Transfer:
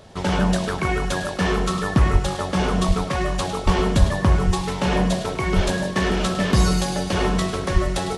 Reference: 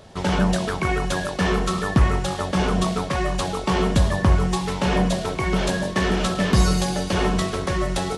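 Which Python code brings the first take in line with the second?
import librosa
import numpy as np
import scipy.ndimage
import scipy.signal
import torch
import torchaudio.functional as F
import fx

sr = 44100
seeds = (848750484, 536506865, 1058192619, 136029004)

y = fx.fix_deplosive(x, sr, at_s=(2.12, 2.87, 3.65, 3.99, 4.46, 5.55, 7.73))
y = fx.fix_echo_inverse(y, sr, delay_ms=103, level_db=-13.0)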